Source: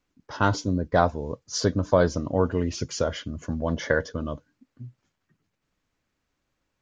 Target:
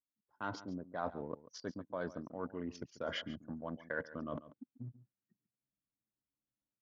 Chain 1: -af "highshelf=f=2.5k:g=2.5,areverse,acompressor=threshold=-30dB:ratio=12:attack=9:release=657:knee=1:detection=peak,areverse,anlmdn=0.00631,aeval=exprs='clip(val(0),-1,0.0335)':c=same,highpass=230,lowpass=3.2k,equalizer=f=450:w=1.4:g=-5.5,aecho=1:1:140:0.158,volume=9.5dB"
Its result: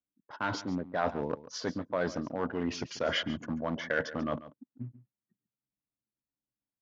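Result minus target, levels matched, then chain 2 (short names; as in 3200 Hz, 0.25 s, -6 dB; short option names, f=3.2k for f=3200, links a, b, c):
compressor: peak gain reduction -9.5 dB
-af "highshelf=f=2.5k:g=2.5,areverse,acompressor=threshold=-40.5dB:ratio=12:attack=9:release=657:knee=1:detection=peak,areverse,anlmdn=0.00631,aeval=exprs='clip(val(0),-1,0.0335)':c=same,highpass=230,lowpass=3.2k,equalizer=f=450:w=1.4:g=-5.5,aecho=1:1:140:0.158,volume=9.5dB"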